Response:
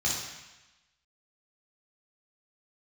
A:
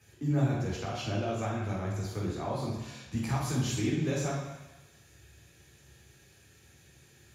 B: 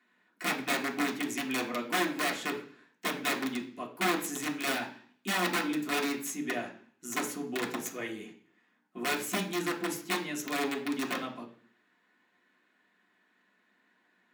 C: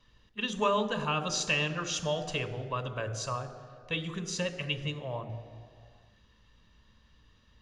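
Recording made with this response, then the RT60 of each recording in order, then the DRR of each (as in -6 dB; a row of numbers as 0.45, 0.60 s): A; 1.0, 0.50, 2.1 s; -5.5, -3.5, 9.5 dB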